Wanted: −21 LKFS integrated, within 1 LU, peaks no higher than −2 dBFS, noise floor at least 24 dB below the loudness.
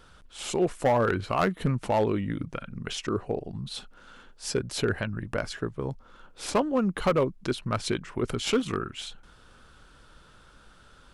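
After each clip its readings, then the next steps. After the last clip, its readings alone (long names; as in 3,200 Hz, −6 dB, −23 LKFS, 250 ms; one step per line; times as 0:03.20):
share of clipped samples 0.5%; peaks flattened at −17.0 dBFS; integrated loudness −29.0 LKFS; sample peak −17.0 dBFS; target loudness −21.0 LKFS
→ clipped peaks rebuilt −17 dBFS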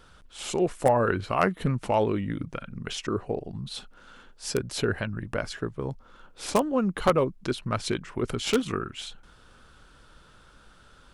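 share of clipped samples 0.0%; integrated loudness −28.5 LKFS; sample peak −8.0 dBFS; target loudness −21.0 LKFS
→ level +7.5 dB
brickwall limiter −2 dBFS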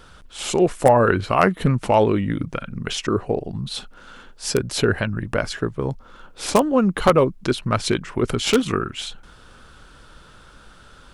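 integrated loudness −21.0 LKFS; sample peak −2.0 dBFS; background noise floor −48 dBFS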